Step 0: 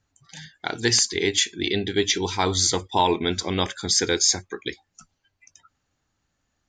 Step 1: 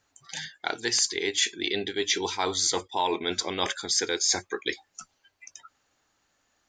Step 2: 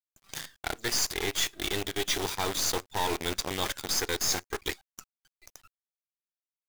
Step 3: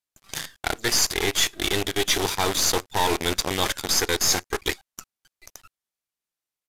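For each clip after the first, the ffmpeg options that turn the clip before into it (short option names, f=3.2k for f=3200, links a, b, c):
-af "areverse,acompressor=threshold=-30dB:ratio=4,areverse,bass=f=250:g=-14,treble=f=4k:g=0,volume=6dB"
-af "acrusher=bits=6:dc=4:mix=0:aa=0.000001,aeval=exprs='0.299*(cos(1*acos(clip(val(0)/0.299,-1,1)))-cos(1*PI/2))+0.0376*(cos(8*acos(clip(val(0)/0.299,-1,1)))-cos(8*PI/2))':c=same,volume=-4.5dB"
-af "aresample=32000,aresample=44100,volume=7dB"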